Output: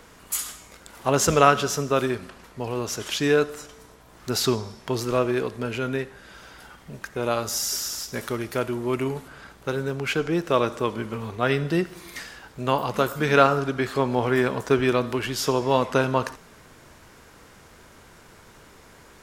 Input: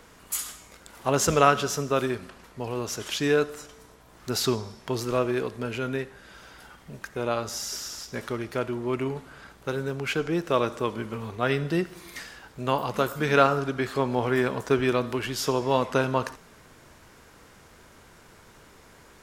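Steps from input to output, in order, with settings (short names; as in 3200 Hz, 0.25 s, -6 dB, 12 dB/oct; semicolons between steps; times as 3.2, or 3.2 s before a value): 7.23–9.28 high shelf 8400 Hz +12 dB; gain +2.5 dB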